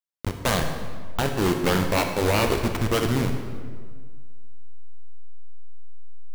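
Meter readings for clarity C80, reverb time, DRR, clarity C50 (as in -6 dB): 7.5 dB, 1.7 s, 4.5 dB, 6.0 dB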